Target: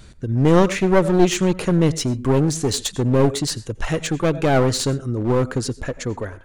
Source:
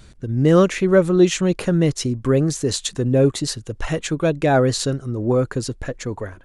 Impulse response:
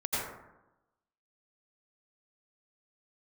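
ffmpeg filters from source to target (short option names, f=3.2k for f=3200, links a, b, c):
-filter_complex "[0:a]asplit=2[a][b];[1:a]atrim=start_sample=2205,atrim=end_sample=6174[c];[b][c]afir=irnorm=-1:irlink=0,volume=-22dB[d];[a][d]amix=inputs=2:normalize=0,aeval=exprs='clip(val(0),-1,0.0944)':c=same,volume=1dB"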